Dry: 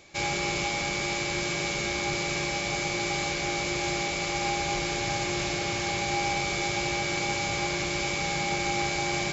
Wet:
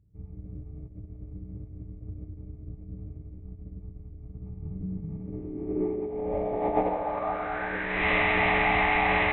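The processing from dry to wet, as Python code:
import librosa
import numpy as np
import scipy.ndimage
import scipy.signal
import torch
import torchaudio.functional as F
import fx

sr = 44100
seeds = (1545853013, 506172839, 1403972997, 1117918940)

y = fx.dynamic_eq(x, sr, hz=170.0, q=0.7, threshold_db=-43.0, ratio=4.0, max_db=-4)
y = fx.filter_sweep_lowpass(y, sr, from_hz=110.0, to_hz=2200.0, start_s=4.33, end_s=8.06, q=6.8)
y = fx.air_absorb(y, sr, metres=140.0)
y = fx.echo_bbd(y, sr, ms=200, stages=1024, feedback_pct=61, wet_db=-4.5)
y = fx.pitch_keep_formants(y, sr, semitones=-11.0)
y = y * librosa.db_to_amplitude(-3.0)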